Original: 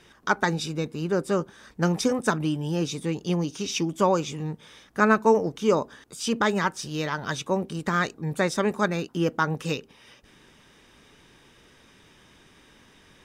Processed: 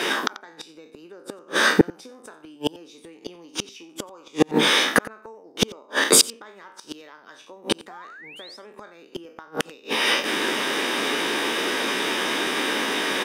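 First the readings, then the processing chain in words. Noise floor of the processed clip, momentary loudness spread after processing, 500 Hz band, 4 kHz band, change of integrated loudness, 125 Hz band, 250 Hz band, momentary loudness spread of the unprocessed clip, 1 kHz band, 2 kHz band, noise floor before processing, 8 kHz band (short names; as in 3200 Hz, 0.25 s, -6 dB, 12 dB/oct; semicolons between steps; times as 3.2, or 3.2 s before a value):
-51 dBFS, 23 LU, -1.5 dB, +12.5 dB, +4.0 dB, -9.0 dB, -1.0 dB, 8 LU, -1.0 dB, +6.0 dB, -56 dBFS, +11.5 dB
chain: spectral trails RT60 0.37 s; HPF 270 Hz 24 dB/oct; bell 6700 Hz -5.5 dB 0.75 oct; compressor 4:1, threshold -31 dBFS, peak gain reduction 14.5 dB; painted sound rise, 7.89–8.57, 690–5400 Hz -32 dBFS; flipped gate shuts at -29 dBFS, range -42 dB; echo 89 ms -23 dB; maximiser +32 dB; gain -1 dB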